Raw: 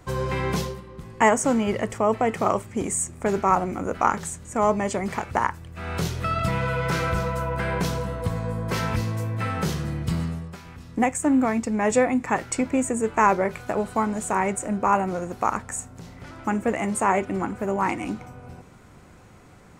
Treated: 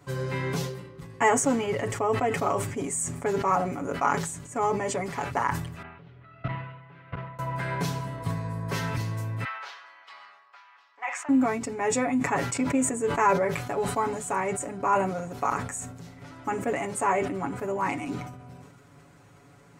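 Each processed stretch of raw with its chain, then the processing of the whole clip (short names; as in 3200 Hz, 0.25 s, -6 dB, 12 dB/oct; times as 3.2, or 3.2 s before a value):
5.82–7.39 self-modulated delay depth 0.13 ms + LPF 2800 Hz 24 dB/oct + level quantiser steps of 23 dB
9.44–11.29 HPF 880 Hz 24 dB/oct + air absorption 240 m
whole clip: HPF 59 Hz; comb 7.1 ms, depth 88%; sustainer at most 58 dB/s; gain -6.5 dB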